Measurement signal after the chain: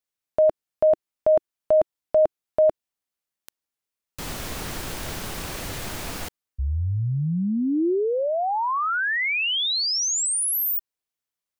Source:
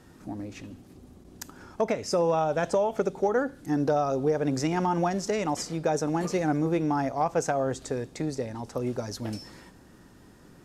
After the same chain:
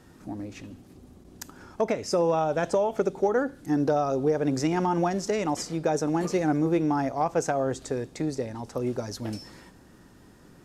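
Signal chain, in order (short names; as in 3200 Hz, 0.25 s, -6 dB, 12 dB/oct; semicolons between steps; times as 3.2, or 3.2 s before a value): dynamic EQ 340 Hz, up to +3 dB, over -37 dBFS, Q 2.5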